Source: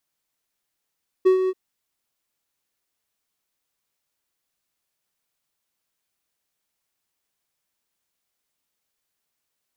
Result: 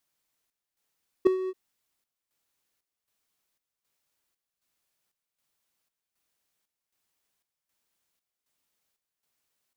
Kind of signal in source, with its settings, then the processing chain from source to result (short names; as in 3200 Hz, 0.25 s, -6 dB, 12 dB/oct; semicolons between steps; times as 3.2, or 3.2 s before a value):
ADSR triangle 374 Hz, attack 17 ms, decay 0.108 s, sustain -8 dB, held 0.24 s, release 43 ms -9 dBFS
chopper 1.3 Hz, depth 65%, duty 65%